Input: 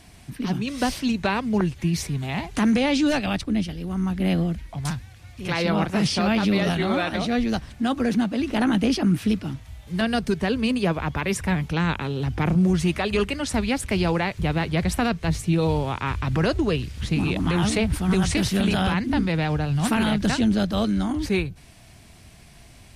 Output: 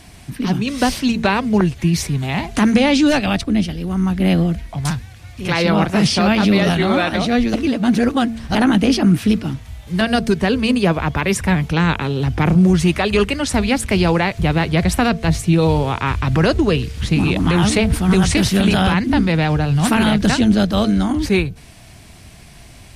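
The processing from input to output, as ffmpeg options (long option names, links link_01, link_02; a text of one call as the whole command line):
ffmpeg -i in.wav -filter_complex "[0:a]asplit=3[link_01][link_02][link_03];[link_01]atrim=end=7.542[link_04];[link_02]atrim=start=7.538:end=8.552,asetpts=PTS-STARTPTS,areverse[link_05];[link_03]atrim=start=8.548[link_06];[link_04][link_05]acrossfade=duration=0.004:curve1=hsin:curve2=hsin[link_07];[link_07][link_06]acrossfade=duration=0.004:curve1=hsin:curve2=hsin,bandreject=frequency=226.4:width_type=h:width=4,bandreject=frequency=452.8:width_type=h:width=4,bandreject=frequency=679.2:width_type=h:width=4,volume=7dB" out.wav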